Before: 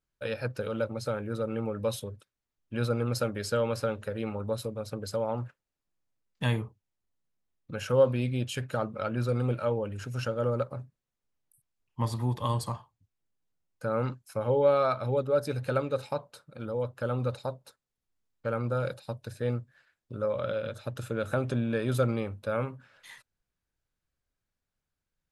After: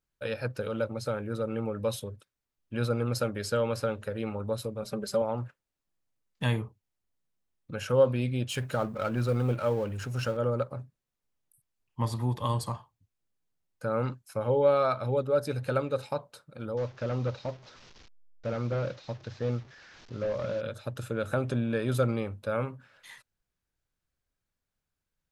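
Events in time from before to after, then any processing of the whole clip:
0:04.82–0:05.22: comb filter 5.1 ms, depth 95%
0:08.50–0:10.37: mu-law and A-law mismatch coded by mu
0:16.77–0:20.61: linear delta modulator 32 kbit/s, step −47 dBFS

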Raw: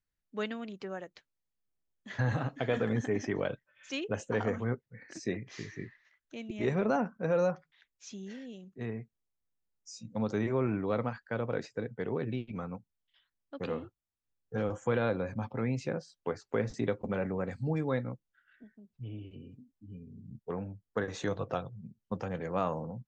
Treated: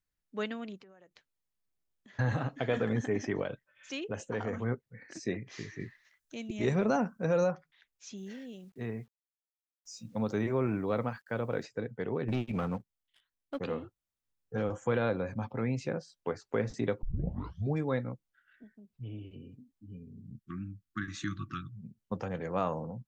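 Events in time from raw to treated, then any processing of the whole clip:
0:00.81–0:02.19: downward compressor 16 to 1, threshold −53 dBFS
0:03.42–0:04.53: downward compressor 1.5 to 1, threshold −36 dBFS
0:05.80–0:07.44: bass and treble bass +3 dB, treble +9 dB
0:08.17–0:11.64: bit-depth reduction 12 bits, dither none
0:12.28–0:13.59: leveller curve on the samples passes 2
0:17.03: tape start 0.73 s
0:20.35–0:21.77: linear-phase brick-wall band-stop 360–1,100 Hz

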